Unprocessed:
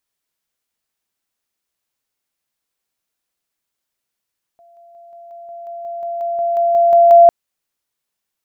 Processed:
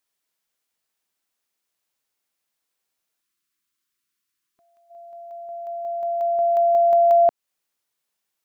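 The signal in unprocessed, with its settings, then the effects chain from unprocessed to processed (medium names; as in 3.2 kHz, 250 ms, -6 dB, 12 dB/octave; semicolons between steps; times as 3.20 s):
level ladder 685 Hz -45 dBFS, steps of 3 dB, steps 15, 0.18 s 0.00 s
time-frequency box 3.21–4.90 s, 390–1000 Hz -14 dB; bass shelf 150 Hz -8 dB; compression 3:1, threshold -16 dBFS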